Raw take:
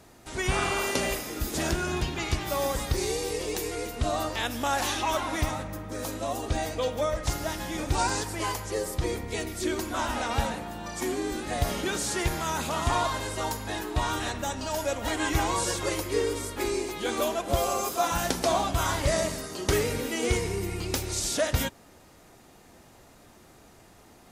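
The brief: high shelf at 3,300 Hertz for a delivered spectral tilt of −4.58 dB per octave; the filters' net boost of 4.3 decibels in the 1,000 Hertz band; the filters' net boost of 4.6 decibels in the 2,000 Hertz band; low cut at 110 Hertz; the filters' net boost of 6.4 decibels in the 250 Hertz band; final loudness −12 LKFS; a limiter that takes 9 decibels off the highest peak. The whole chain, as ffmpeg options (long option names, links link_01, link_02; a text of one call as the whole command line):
ffmpeg -i in.wav -af "highpass=110,equalizer=frequency=250:width_type=o:gain=8.5,equalizer=frequency=1000:width_type=o:gain=4,equalizer=frequency=2000:width_type=o:gain=6.5,highshelf=frequency=3300:gain=-7,volume=16dB,alimiter=limit=-2dB:level=0:latency=1" out.wav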